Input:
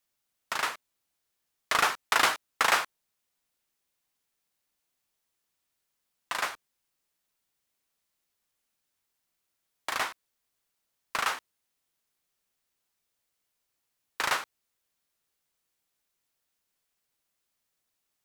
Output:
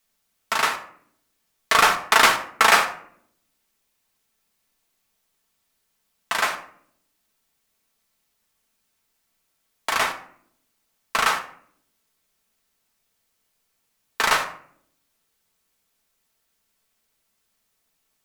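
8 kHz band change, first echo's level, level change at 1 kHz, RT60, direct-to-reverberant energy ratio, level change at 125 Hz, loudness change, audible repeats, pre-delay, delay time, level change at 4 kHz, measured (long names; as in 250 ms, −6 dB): +8.0 dB, no echo audible, +9.0 dB, 0.60 s, 3.5 dB, +10.0 dB, +8.0 dB, no echo audible, 4 ms, no echo audible, +8.0 dB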